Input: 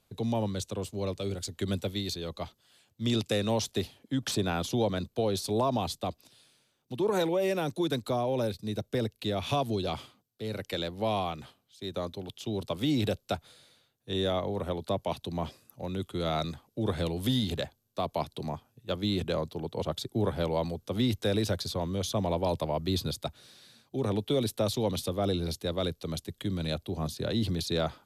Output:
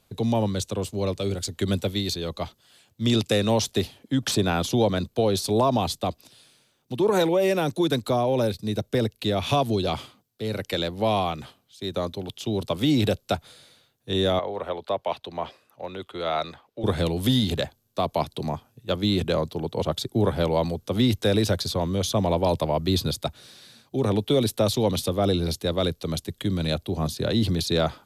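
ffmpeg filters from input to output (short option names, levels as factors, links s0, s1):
-filter_complex "[0:a]asettb=1/sr,asplit=3[s0][s1][s2];[s0]atrim=end=14.394[s3];[s1]atrim=start=14.39:end=16.84,asetpts=PTS-STARTPTS,afade=t=in:d=0.004:c=qsin,afade=t=out:st=2.446:d=0.004:c=qsin,acrossover=split=420 3800:gain=0.178 1 0.178[s4][s5][s6];[s4][s5][s6]amix=inputs=3:normalize=0[s7];[s2]atrim=start=16.836[s8];[s3][s7]acrossfade=d=0.004:c1=hsin:c2=qsin[s9];[s9][s8]acrossfade=d=0.004:c1=qsin:c2=hsin,volume=2.11"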